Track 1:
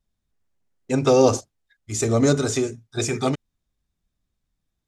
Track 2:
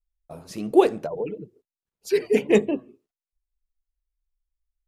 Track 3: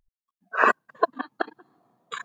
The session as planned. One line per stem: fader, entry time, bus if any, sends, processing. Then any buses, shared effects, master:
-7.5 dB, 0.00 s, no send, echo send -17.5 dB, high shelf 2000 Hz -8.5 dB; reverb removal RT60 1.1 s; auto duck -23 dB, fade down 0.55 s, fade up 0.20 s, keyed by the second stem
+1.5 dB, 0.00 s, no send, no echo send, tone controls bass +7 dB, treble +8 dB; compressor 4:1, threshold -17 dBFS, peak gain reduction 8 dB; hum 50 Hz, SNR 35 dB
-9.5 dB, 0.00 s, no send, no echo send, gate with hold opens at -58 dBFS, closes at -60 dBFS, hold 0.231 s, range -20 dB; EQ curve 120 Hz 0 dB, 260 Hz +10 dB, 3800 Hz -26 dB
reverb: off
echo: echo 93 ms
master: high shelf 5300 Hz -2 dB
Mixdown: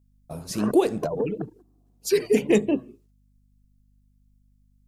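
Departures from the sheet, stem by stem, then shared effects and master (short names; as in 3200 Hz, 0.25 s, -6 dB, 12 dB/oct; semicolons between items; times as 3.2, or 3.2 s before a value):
stem 1: muted; master: missing high shelf 5300 Hz -2 dB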